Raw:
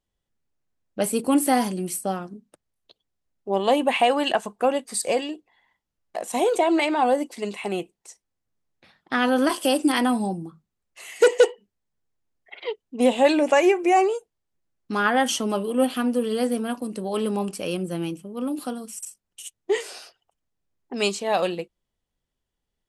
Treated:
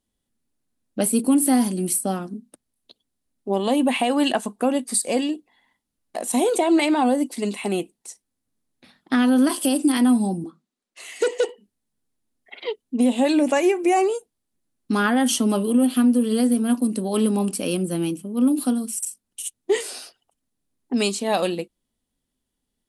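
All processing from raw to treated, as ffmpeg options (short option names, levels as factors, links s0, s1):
-filter_complex "[0:a]asettb=1/sr,asplit=3[s0][s1][s2];[s0]atrim=end=10.444[s3];[s1]atrim=start=10.44:end=11.49,asetpts=PTS-STARTPTS,afade=t=in:d=0.004:c=qsin,afade=t=out:st=1.046:d=0.004:c=qsin,acrossover=split=230 7600:gain=0.0794 1 0.2[s4][s5][s6];[s4][s5][s6]amix=inputs=3:normalize=0,bandreject=f=840:w=24[s7];[s2]atrim=start=11.486[s8];[s3][s7]acrossfade=d=0.004:c1=hsin:c2=qsin[s9];[s9][s8]acrossfade=d=0.004:c1=qsin:c2=hsin,equalizer=f=250:t=o:w=0.67:g=12,equalizer=f=4000:t=o:w=0.67:g=4,equalizer=f=10000:t=o:w=0.67:g=12,alimiter=limit=0.299:level=0:latency=1:release=232"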